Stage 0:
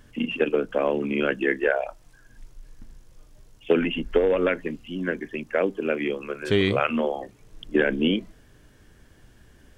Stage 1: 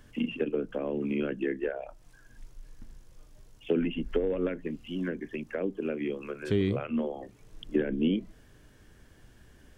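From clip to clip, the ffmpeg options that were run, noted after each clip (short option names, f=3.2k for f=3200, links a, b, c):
-filter_complex "[0:a]acrossover=split=400[a][b];[b]acompressor=threshold=-37dB:ratio=4[c];[a][c]amix=inputs=2:normalize=0,volume=-2.5dB"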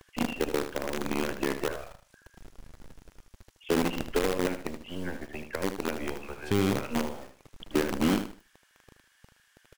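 -filter_complex "[0:a]acrossover=split=1000[a][b];[a]acrusher=bits=5:dc=4:mix=0:aa=0.000001[c];[c][b]amix=inputs=2:normalize=0,aecho=1:1:77|154|231:0.335|0.0871|0.0226"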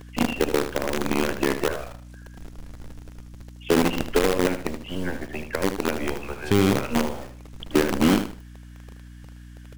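-af "aeval=exprs='val(0)+0.00398*(sin(2*PI*60*n/s)+sin(2*PI*2*60*n/s)/2+sin(2*PI*3*60*n/s)/3+sin(2*PI*4*60*n/s)/4+sin(2*PI*5*60*n/s)/5)':c=same,volume=6.5dB"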